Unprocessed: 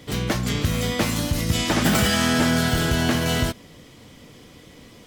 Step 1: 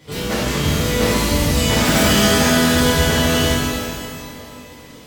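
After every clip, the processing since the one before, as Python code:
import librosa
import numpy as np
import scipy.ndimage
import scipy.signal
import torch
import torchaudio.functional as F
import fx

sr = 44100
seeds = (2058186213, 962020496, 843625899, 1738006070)

y = fx.echo_feedback(x, sr, ms=239, feedback_pct=56, wet_db=-15)
y = fx.rev_shimmer(y, sr, seeds[0], rt60_s=1.8, semitones=12, shimmer_db=-8, drr_db=-10.0)
y = F.gain(torch.from_numpy(y), -5.5).numpy()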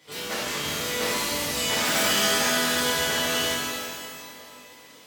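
y = fx.highpass(x, sr, hz=840.0, slope=6)
y = F.gain(torch.from_numpy(y), -4.5).numpy()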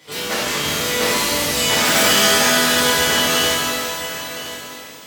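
y = x + 10.0 ** (-13.0 / 20.0) * np.pad(x, (int(1018 * sr / 1000.0), 0))[:len(x)]
y = F.gain(torch.from_numpy(y), 8.0).numpy()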